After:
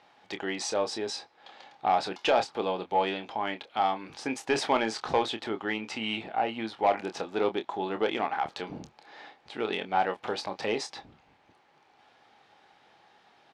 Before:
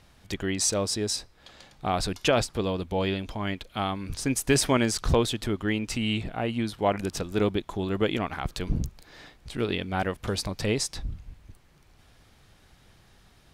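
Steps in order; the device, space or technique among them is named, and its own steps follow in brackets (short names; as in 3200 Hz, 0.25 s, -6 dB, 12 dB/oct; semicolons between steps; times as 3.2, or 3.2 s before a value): intercom (BPF 360–3700 Hz; bell 820 Hz +11 dB 0.27 oct; soft clip -14.5 dBFS, distortion -16 dB; doubler 27 ms -9 dB)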